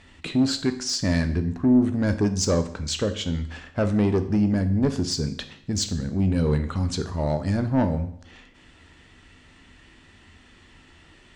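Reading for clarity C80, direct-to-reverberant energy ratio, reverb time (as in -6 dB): 15.5 dB, 8.0 dB, 0.65 s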